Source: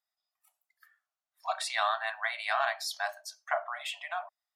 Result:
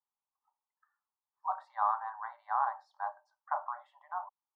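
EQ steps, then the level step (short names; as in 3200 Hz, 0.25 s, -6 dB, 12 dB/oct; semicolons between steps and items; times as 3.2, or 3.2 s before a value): fixed phaser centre 670 Hz, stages 6; dynamic EQ 650 Hz, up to +4 dB, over -47 dBFS, Q 1.5; synth low-pass 900 Hz, resonance Q 4.2; -4.5 dB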